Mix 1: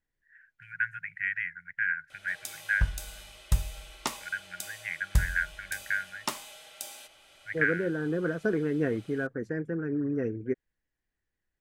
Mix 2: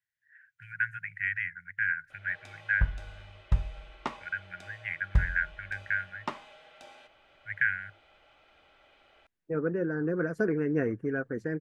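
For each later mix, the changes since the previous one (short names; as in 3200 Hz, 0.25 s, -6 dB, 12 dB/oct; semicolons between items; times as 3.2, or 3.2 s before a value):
first voice: add bell 100 Hz +13.5 dB 0.28 oct; second voice: entry +1.95 s; background: add LPF 2100 Hz 12 dB/oct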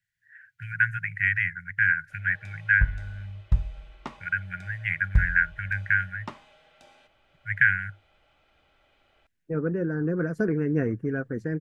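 first voice +7.0 dB; background -4.5 dB; master: add tone controls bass +8 dB, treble +2 dB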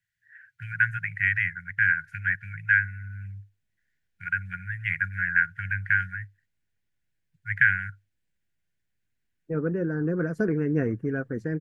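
background: muted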